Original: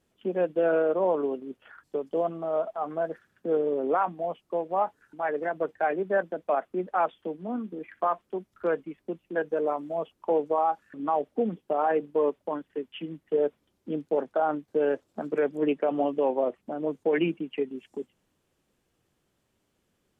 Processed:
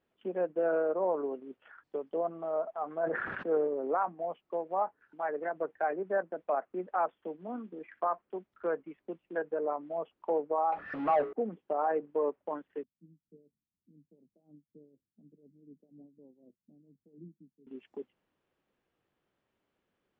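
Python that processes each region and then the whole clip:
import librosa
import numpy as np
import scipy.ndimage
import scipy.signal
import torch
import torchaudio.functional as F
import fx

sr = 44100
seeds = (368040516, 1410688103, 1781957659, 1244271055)

y = fx.chain(x, sr, fx.peak_eq(hz=1400.0, db=5.5, octaves=2.6),
    fx.sustainer(db_per_s=31.0), at=(3.03, 3.67))
y = fx.chain(y, sr, fx.hum_notches(base_hz=60, count=7),
    fx.comb(ms=1.6, depth=0.47),
    fx.power_curve(exponent=0.5), at=(10.72, 11.33))
y = fx.chain(y, sr, fx.tremolo(hz=4.1, depth=0.69),
    fx.ladder_lowpass(hz=230.0, resonance_pct=30), at=(12.83, 17.67))
y = fx.low_shelf(y, sr, hz=240.0, db=-10.0)
y = fx.env_lowpass_down(y, sr, base_hz=1700.0, full_db=-26.0)
y = scipy.signal.sosfilt(scipy.signal.butter(2, 2700.0, 'lowpass', fs=sr, output='sos'), y)
y = F.gain(torch.from_numpy(y), -3.5).numpy()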